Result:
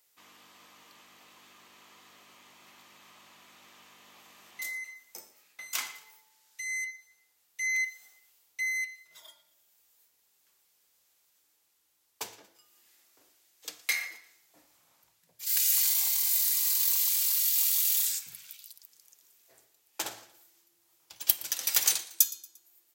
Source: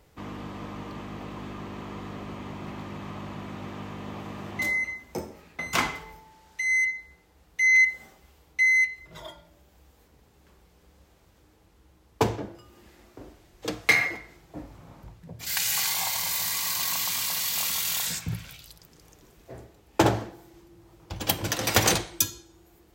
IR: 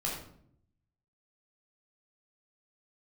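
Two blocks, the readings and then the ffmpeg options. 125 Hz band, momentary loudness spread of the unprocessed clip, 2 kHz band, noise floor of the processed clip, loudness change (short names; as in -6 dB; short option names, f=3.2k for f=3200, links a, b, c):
under -30 dB, 18 LU, -11.0 dB, -71 dBFS, -2.0 dB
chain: -af "aderivative,aecho=1:1:116|232|348:0.1|0.042|0.0176"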